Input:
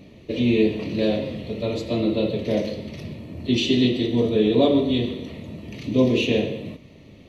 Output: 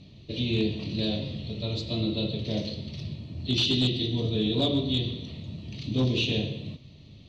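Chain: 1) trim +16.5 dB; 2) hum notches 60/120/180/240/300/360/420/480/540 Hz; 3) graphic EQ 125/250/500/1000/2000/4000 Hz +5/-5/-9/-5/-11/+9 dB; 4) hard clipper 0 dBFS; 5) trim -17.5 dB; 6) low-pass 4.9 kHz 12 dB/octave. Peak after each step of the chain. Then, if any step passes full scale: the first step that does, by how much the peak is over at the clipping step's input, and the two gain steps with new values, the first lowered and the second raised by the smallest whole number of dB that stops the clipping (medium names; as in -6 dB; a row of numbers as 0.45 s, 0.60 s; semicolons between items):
+9.0 dBFS, +9.5 dBFS, +7.5 dBFS, 0.0 dBFS, -17.5 dBFS, -17.0 dBFS; step 1, 7.5 dB; step 1 +8.5 dB, step 5 -9.5 dB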